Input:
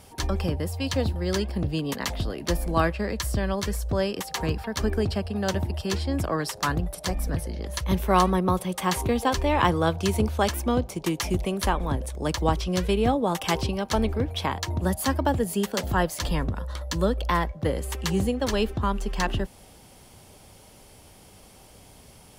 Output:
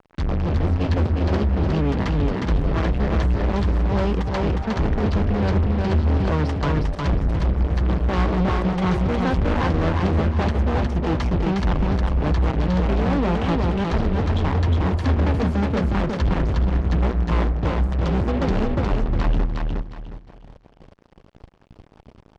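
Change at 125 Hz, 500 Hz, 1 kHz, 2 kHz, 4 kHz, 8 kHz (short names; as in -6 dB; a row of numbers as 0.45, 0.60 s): +8.5 dB, +1.5 dB, 0.0 dB, +0.5 dB, -4.0 dB, under -10 dB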